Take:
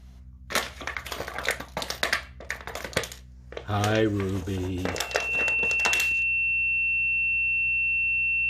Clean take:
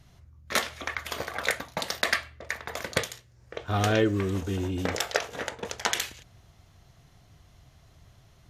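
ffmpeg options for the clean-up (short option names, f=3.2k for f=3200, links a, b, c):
-af "bandreject=f=62.7:t=h:w=4,bandreject=f=125.4:t=h:w=4,bandreject=f=188.1:t=h:w=4,bandreject=f=250.8:t=h:w=4,bandreject=f=2.7k:w=30"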